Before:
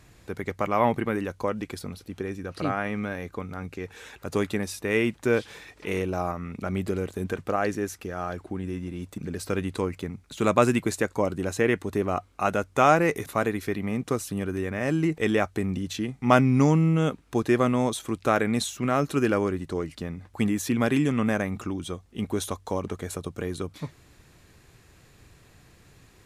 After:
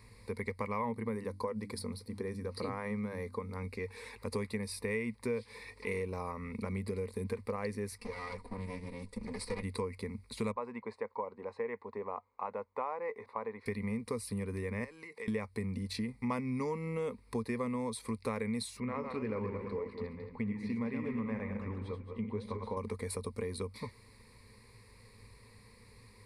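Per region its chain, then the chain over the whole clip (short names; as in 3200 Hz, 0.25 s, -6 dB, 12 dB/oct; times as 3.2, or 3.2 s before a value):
0.81–3.56 bell 2500 Hz -7 dB 0.69 oct + notches 50/100/150/200/250/300 Hz
7.98–9.63 minimum comb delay 4.1 ms + LPF 10000 Hz 24 dB/oct
10.52–13.66 band-pass 830 Hz, Q 1.8 + air absorption 70 m
14.84–15.28 weighting filter A + compressor, threshold -39 dBFS
18.8–22.77 regenerating reverse delay 0.111 s, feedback 53%, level -6 dB + LPF 2600 Hz + flange 1.9 Hz, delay 6 ms, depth 7.9 ms, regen +79%
whole clip: ripple EQ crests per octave 0.92, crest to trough 16 dB; compressor 4:1, threshold -28 dBFS; gain -6 dB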